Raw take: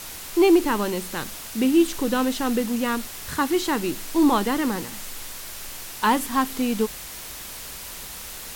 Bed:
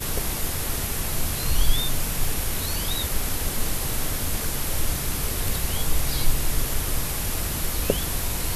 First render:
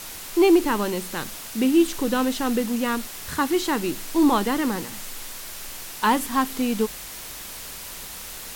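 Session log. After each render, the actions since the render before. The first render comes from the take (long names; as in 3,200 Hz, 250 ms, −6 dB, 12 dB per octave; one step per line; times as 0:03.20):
hum removal 60 Hz, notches 2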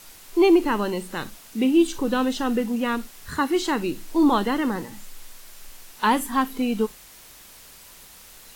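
noise reduction from a noise print 10 dB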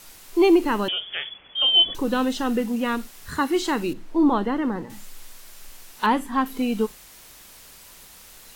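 0:00.88–0:01.95: voice inversion scrambler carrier 3,400 Hz
0:03.93–0:04.90: low-pass filter 1,300 Hz 6 dB per octave
0:06.06–0:06.46: low-pass filter 2,500 Hz 6 dB per octave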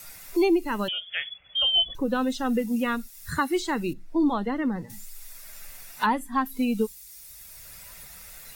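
spectral dynamics exaggerated over time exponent 1.5
multiband upward and downward compressor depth 70%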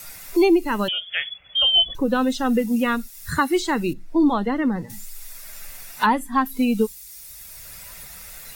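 level +5 dB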